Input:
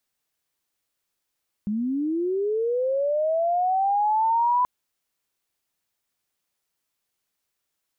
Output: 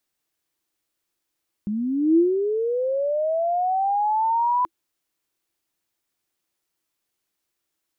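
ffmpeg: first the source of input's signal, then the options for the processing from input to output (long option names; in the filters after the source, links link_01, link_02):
-f lavfi -i "aevalsrc='pow(10,(-23+5.5*t/2.98)/20)*sin(2*PI*(200*t+800*t*t/(2*2.98)))':duration=2.98:sample_rate=44100"
-af "equalizer=frequency=330:width_type=o:width=0.25:gain=10"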